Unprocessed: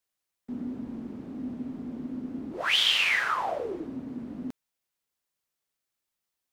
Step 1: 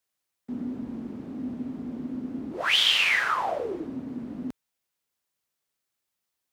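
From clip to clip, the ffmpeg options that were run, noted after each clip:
ffmpeg -i in.wav -af "highpass=43,volume=2dB" out.wav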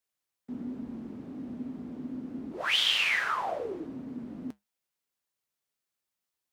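ffmpeg -i in.wav -af "flanger=delay=4.3:depth=3.2:regen=-74:speed=1.2:shape=triangular" out.wav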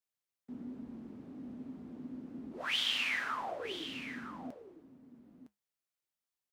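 ffmpeg -i in.wav -af "aecho=1:1:960:0.282,volume=-7dB" out.wav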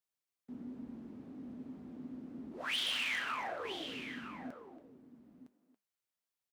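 ffmpeg -i in.wav -filter_complex "[0:a]asplit=2[link_01][link_02];[link_02]adelay=280,highpass=300,lowpass=3400,asoftclip=type=hard:threshold=-29.5dB,volume=-9dB[link_03];[link_01][link_03]amix=inputs=2:normalize=0,volume=28.5dB,asoftclip=hard,volume=-28.5dB,volume=-1.5dB" out.wav

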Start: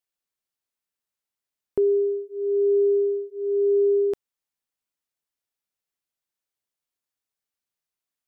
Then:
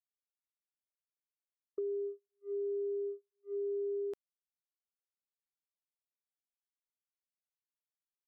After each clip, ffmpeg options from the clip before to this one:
ffmpeg -i in.wav -af "agate=range=-39dB:threshold=-24dB:ratio=16:detection=peak,lowshelf=frequency=370:gain=-7,acompressor=threshold=-25dB:ratio=6,volume=-9dB" out.wav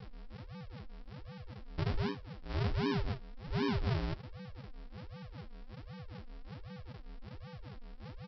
ffmpeg -i in.wav -af "aeval=exprs='val(0)+0.00447*sin(2*PI*500*n/s)':channel_layout=same,aresample=11025,acrusher=samples=32:mix=1:aa=0.000001:lfo=1:lforange=32:lforate=1.3,aresample=44100,flanger=delay=6.6:depth=3.1:regen=-46:speed=1.7:shape=sinusoidal,volume=7dB" out.wav

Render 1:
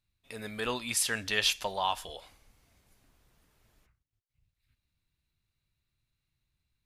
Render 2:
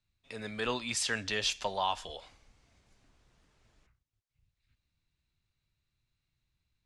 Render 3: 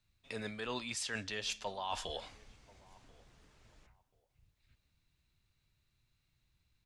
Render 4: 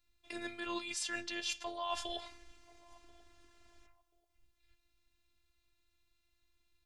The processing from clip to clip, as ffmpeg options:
ffmpeg -i in.wav -filter_complex "[0:a]lowpass=frequency=7800:width=0.5412,lowpass=frequency=7800:width=1.3066,acrossover=split=120|660|5400[link_01][link_02][link_03][link_04];[link_03]alimiter=limit=-21.5dB:level=0:latency=1:release=146[link_05];[link_01][link_02][link_05][link_04]amix=inputs=4:normalize=0" out.wav
ffmpeg -i in.wav -filter_complex "[0:a]areverse,acompressor=threshold=-40dB:ratio=8,areverse,asplit=2[link_01][link_02];[link_02]adelay=1035,lowpass=frequency=1100:poles=1,volume=-22.5dB,asplit=2[link_03][link_04];[link_04]adelay=1035,lowpass=frequency=1100:poles=1,volume=0.27[link_05];[link_01][link_03][link_05]amix=inputs=3:normalize=0,volume=4dB" out.wav
ffmpeg -i in.wav -af "afftfilt=real='hypot(re,im)*cos(PI*b)':imag='0':win_size=512:overlap=0.75,volume=4dB" out.wav

